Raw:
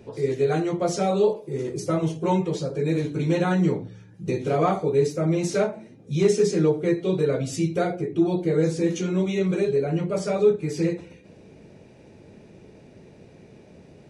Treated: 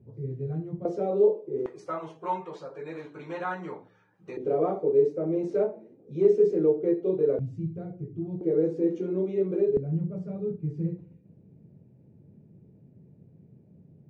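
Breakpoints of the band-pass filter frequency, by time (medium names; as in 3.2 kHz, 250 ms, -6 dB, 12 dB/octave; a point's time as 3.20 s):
band-pass filter, Q 1.9
120 Hz
from 0.85 s 400 Hz
from 1.66 s 1.1 kHz
from 4.37 s 420 Hz
from 7.39 s 110 Hz
from 8.41 s 390 Hz
from 9.77 s 140 Hz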